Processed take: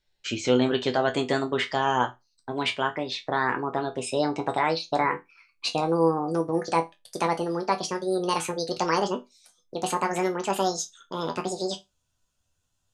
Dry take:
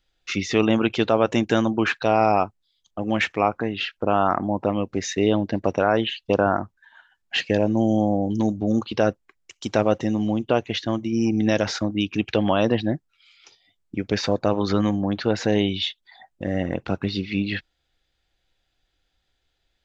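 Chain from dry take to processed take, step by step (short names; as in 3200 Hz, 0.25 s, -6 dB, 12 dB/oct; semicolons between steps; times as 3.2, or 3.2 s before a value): speed glide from 112% -> 195%; resonator bank E2 minor, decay 0.2 s; gain +5.5 dB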